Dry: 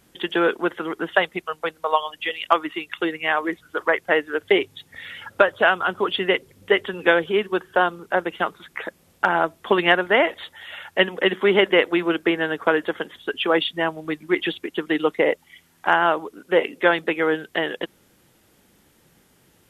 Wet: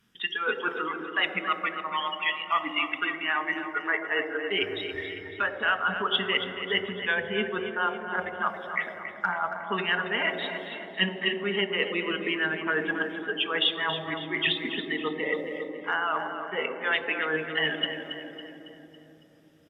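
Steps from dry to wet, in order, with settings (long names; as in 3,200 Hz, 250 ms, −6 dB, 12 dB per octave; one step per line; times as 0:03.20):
noise reduction from a noise print of the clip's start 17 dB
reversed playback
downward compressor 6 to 1, threshold −33 dBFS, peak gain reduction 21.5 dB
reversed playback
repeating echo 277 ms, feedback 46%, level −10 dB
convolution reverb RT60 3.5 s, pre-delay 3 ms, DRR 8.5 dB
level +1.5 dB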